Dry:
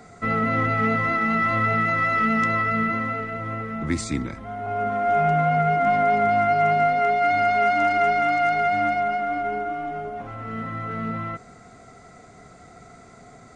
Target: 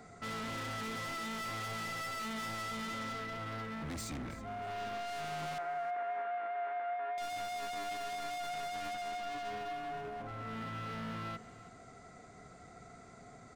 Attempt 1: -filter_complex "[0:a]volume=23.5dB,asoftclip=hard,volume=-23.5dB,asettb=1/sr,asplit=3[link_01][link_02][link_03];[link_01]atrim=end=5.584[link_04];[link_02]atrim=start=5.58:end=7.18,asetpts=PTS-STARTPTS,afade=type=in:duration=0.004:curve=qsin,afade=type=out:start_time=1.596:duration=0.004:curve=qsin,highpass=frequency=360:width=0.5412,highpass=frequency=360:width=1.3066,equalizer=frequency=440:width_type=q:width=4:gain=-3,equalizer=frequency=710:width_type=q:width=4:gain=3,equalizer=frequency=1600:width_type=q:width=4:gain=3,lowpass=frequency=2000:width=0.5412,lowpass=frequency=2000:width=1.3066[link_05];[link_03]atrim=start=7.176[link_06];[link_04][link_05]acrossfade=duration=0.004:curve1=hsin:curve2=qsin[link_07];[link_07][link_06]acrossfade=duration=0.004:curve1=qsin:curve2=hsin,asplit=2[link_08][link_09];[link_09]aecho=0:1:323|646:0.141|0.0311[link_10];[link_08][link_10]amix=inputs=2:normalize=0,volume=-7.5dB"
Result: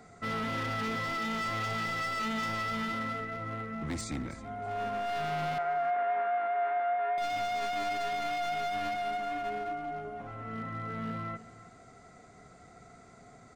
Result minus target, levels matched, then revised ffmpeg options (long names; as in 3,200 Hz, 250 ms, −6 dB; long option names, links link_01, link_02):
gain into a clipping stage and back: distortion −4 dB
-filter_complex "[0:a]volume=31.5dB,asoftclip=hard,volume=-31.5dB,asettb=1/sr,asplit=3[link_01][link_02][link_03];[link_01]atrim=end=5.584[link_04];[link_02]atrim=start=5.58:end=7.18,asetpts=PTS-STARTPTS,afade=type=in:duration=0.004:curve=qsin,afade=type=out:start_time=1.596:duration=0.004:curve=qsin,highpass=frequency=360:width=0.5412,highpass=frequency=360:width=1.3066,equalizer=frequency=440:width_type=q:width=4:gain=-3,equalizer=frequency=710:width_type=q:width=4:gain=3,equalizer=frequency=1600:width_type=q:width=4:gain=3,lowpass=frequency=2000:width=0.5412,lowpass=frequency=2000:width=1.3066[link_05];[link_03]atrim=start=7.176[link_06];[link_04][link_05]acrossfade=duration=0.004:curve1=hsin:curve2=qsin[link_07];[link_07][link_06]acrossfade=duration=0.004:curve1=qsin:curve2=hsin,asplit=2[link_08][link_09];[link_09]aecho=0:1:323|646:0.141|0.0311[link_10];[link_08][link_10]amix=inputs=2:normalize=0,volume=-7.5dB"